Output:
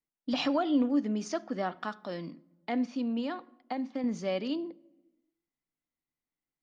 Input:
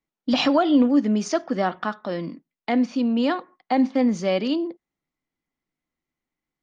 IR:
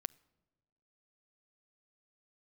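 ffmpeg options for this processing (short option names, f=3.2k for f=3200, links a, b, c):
-filter_complex "[0:a]asettb=1/sr,asplit=3[a][b][c];[a]atrim=end=1.804[d];[b]atrim=start=1.8:end=2.31,asetpts=PTS-STARTPTS,afade=t=in:d=0.004:c=qsin,afade=t=out:st=0.506:d=0.004:c=qsin,highshelf=f=5.2k:g=11[e];[c]atrim=start=2.306[f];[d][e]acrossfade=d=0.004:c1=hsin:c2=qsin[g];[g][f]acrossfade=d=0.004:c1=qsin:c2=hsin,asettb=1/sr,asplit=3[h][i][j];[h]atrim=end=3.194[k];[i]atrim=start=3.19:end=4.04,asetpts=PTS-STARTPTS,afade=t=in:d=0.004:c=qsin,afade=t=out:st=0.846:d=0.004:c=qsin,acompressor=threshold=-21dB:ratio=6[l];[j]atrim=start=4.036[m];[k][l]acrossfade=d=0.004:c1=hsin:c2=qsin[n];[n][m]acrossfade=d=0.004:c1=qsin:c2=hsin[o];[1:a]atrim=start_sample=2205[p];[o][p]afir=irnorm=-1:irlink=0,volume=-7dB"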